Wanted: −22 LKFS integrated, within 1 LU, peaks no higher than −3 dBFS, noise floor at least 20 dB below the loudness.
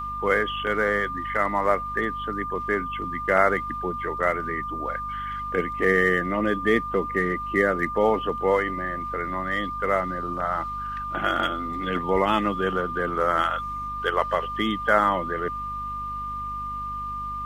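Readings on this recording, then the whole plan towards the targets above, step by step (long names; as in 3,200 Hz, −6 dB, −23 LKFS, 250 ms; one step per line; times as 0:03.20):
mains hum 50 Hz; hum harmonics up to 250 Hz; level of the hum −38 dBFS; interfering tone 1,200 Hz; level of the tone −29 dBFS; integrated loudness −25.0 LKFS; sample peak −5.0 dBFS; target loudness −22.0 LKFS
→ hum removal 50 Hz, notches 5
notch filter 1,200 Hz, Q 30
level +3 dB
brickwall limiter −3 dBFS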